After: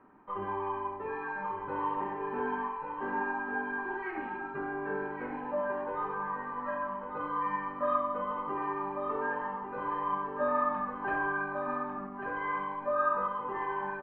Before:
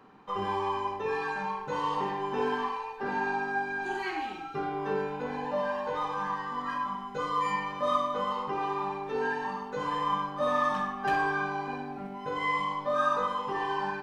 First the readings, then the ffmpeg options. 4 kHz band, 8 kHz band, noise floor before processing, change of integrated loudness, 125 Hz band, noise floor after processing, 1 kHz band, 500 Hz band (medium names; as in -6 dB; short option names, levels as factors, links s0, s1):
under -15 dB, no reading, -41 dBFS, -2.5 dB, -6.0 dB, -41 dBFS, -3.0 dB, -2.5 dB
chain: -filter_complex "[0:a]lowpass=f=2000:w=0.5412,lowpass=f=2000:w=1.3066,aecho=1:1:3.2:0.4,asplit=2[s0][s1];[s1]aecho=0:1:1145:0.473[s2];[s0][s2]amix=inputs=2:normalize=0,volume=0.631"